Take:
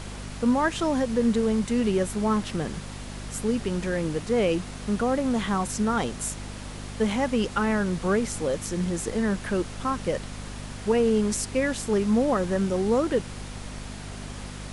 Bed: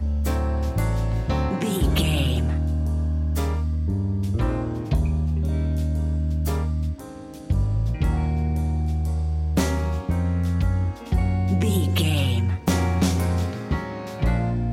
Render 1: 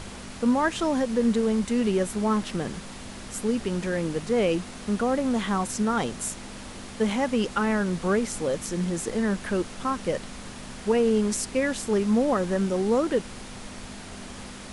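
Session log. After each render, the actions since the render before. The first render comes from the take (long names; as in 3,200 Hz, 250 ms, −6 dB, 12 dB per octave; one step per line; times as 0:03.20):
hum removal 50 Hz, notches 3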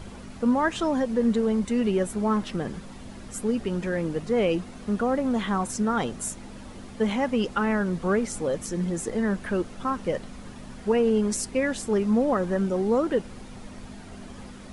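broadband denoise 9 dB, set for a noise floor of −41 dBFS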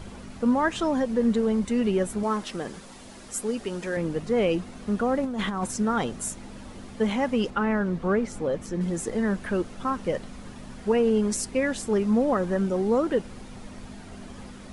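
0:02.23–0:03.97: bass and treble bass −9 dB, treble +5 dB
0:05.23–0:05.66: compressor whose output falls as the input rises −27 dBFS, ratio −0.5
0:07.50–0:08.81: low-pass filter 2,800 Hz 6 dB per octave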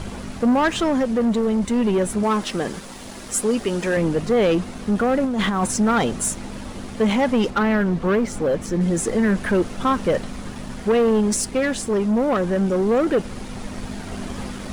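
leveller curve on the samples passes 2
speech leveller within 4 dB 2 s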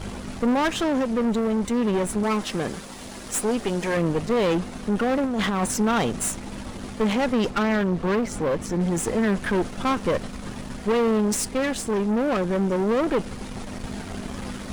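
one-sided soft clipper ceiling −28.5 dBFS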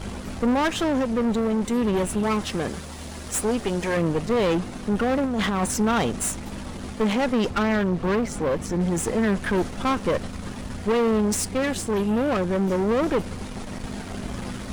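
mix in bed −18 dB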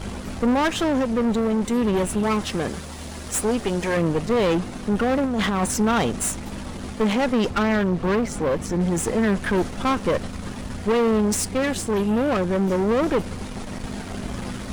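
level +1.5 dB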